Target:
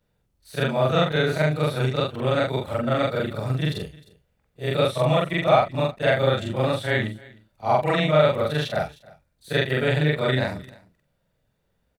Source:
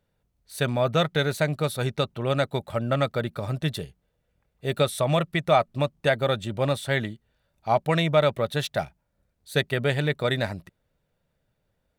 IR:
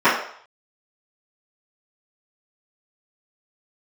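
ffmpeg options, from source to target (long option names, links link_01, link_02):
-filter_complex "[0:a]afftfilt=real='re':imag='-im':win_size=4096:overlap=0.75,asplit=2[link_01][link_02];[link_02]aecho=0:1:307:0.0668[link_03];[link_01][link_03]amix=inputs=2:normalize=0,acrossover=split=4400[link_04][link_05];[link_05]acompressor=threshold=-52dB:ratio=4:attack=1:release=60[link_06];[link_04][link_06]amix=inputs=2:normalize=0,volume=7dB"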